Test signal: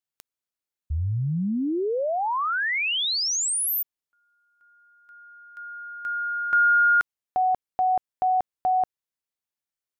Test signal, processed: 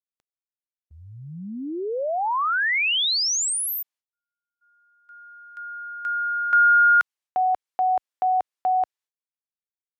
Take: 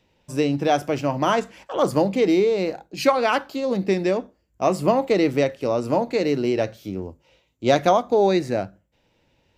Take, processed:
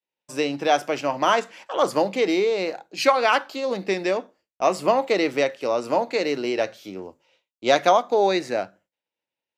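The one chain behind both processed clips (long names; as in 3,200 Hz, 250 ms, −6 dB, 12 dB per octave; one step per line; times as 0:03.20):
meter weighting curve A
downward expander −52 dBFS
level +2 dB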